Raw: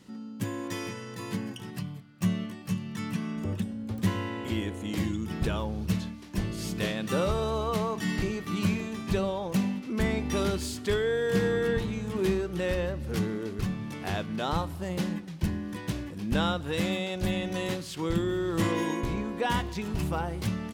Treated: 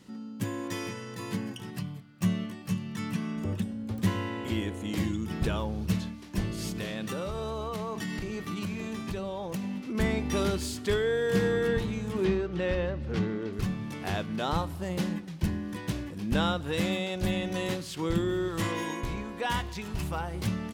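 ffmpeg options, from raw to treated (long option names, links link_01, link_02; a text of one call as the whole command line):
ffmpeg -i in.wav -filter_complex "[0:a]asettb=1/sr,asplit=3[link_01][link_02][link_03];[link_01]atrim=end=6.684[link_04];[link_02]atrim=start=6.68:end=9.95,asetpts=PTS-STARTPTS,afade=type=in:duration=0.004:curve=qsin,afade=type=out:start_time=3.266:duration=0.004:curve=qsin,acompressor=threshold=-30dB:ratio=6:attack=3.2:release=140:knee=1:detection=peak[link_05];[link_03]atrim=start=9.946[link_06];[link_04][link_05]acrossfade=duration=0.004:curve1=hsin:curve2=qsin[link_07];[link_07][link_06]acrossfade=duration=0.004:curve1=qsin:curve2=hsin,asettb=1/sr,asplit=3[link_08][link_09][link_10];[link_08]atrim=end=12.244[link_11];[link_09]atrim=start=12.24:end=13.53,asetpts=PTS-STARTPTS,afade=type=in:duration=0.004:curve=qsin,afade=type=out:start_time=1.286:duration=0.004:curve=qsin,lowpass=4100[link_12];[link_10]atrim=start=13.526[link_13];[link_11][link_12]acrossfade=duration=0.004:curve1=hsin:curve2=qsin[link_14];[link_14][link_13]acrossfade=duration=0.004:curve1=qsin:curve2=hsin,asettb=1/sr,asplit=3[link_15][link_16][link_17];[link_15]atrim=end=18.484[link_18];[link_16]atrim=start=18.48:end=20.34,asetpts=PTS-STARTPTS,afade=type=in:duration=0.004:curve=qsin,afade=type=out:start_time=1.856:duration=0.004:curve=qsin,equalizer=frequency=280:width=0.52:gain=-6[link_19];[link_17]atrim=start=20.336[link_20];[link_18][link_19]acrossfade=duration=0.004:curve1=hsin:curve2=qsin[link_21];[link_21][link_20]acrossfade=duration=0.004:curve1=qsin:curve2=hsin" out.wav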